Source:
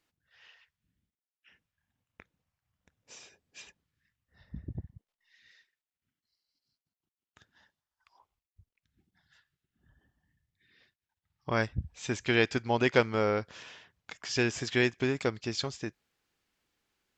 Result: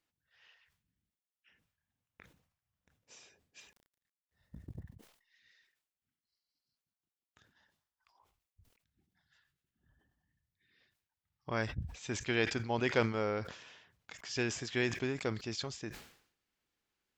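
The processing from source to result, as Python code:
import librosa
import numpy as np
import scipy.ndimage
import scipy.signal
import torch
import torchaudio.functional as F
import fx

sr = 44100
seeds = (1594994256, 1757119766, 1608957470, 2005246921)

y = fx.law_mismatch(x, sr, coded='A', at=(3.6, 4.8))
y = fx.sustainer(y, sr, db_per_s=95.0)
y = y * 10.0 ** (-6.5 / 20.0)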